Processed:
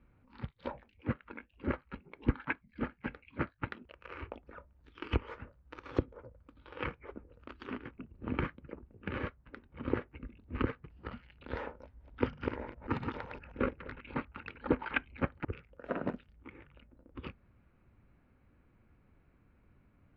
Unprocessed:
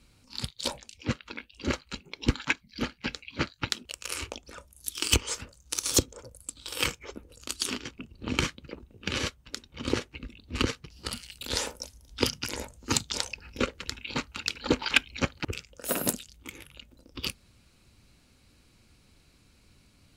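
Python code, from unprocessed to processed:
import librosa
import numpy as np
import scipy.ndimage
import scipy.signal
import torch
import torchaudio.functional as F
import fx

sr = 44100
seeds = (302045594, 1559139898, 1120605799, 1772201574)

y = fx.reverse_delay(x, sr, ms=129, wet_db=-4.0, at=(11.84, 14.25))
y = scipy.signal.sosfilt(scipy.signal.butter(4, 1900.0, 'lowpass', fs=sr, output='sos'), y)
y = y * librosa.db_to_amplitude(-4.0)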